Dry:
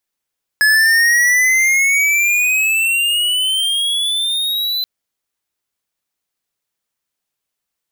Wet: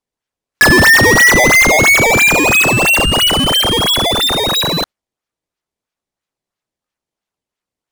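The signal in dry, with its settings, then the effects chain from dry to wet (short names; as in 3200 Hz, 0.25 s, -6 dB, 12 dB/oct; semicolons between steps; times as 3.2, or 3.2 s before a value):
gliding synth tone square, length 4.23 s, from 1700 Hz, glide +15 st, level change -7.5 dB, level -11 dB
LPF 9200 Hz 12 dB/oct; spectral noise reduction 7 dB; in parallel at +2 dB: decimation with a swept rate 18×, swing 160% 3 Hz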